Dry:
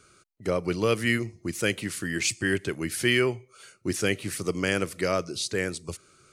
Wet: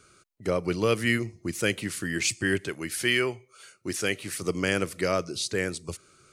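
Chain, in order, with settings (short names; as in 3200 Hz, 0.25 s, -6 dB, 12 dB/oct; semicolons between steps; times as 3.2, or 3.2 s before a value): 2.67–4.42 low shelf 370 Hz -7 dB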